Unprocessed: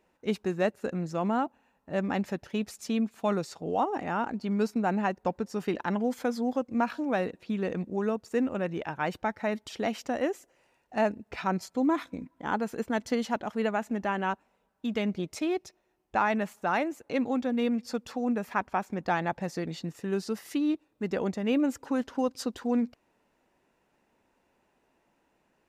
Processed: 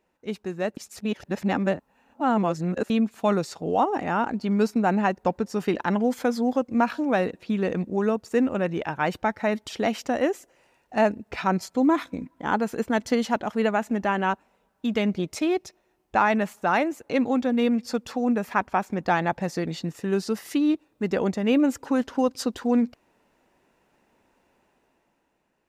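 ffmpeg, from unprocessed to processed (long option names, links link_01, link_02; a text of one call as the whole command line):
ffmpeg -i in.wav -filter_complex "[0:a]asplit=3[link_01][link_02][link_03];[link_01]atrim=end=0.772[link_04];[link_02]atrim=start=0.768:end=2.902,asetpts=PTS-STARTPTS,areverse[link_05];[link_03]atrim=start=2.898[link_06];[link_04][link_05]acrossfade=duration=0.004:curve1=hsin:curve2=hsin[link_07];[link_07][link_06]acrossfade=duration=0.004:curve1=hsin:curve2=hsin,dynaudnorm=framelen=180:gausssize=11:maxgain=8dB,volume=-2.5dB" out.wav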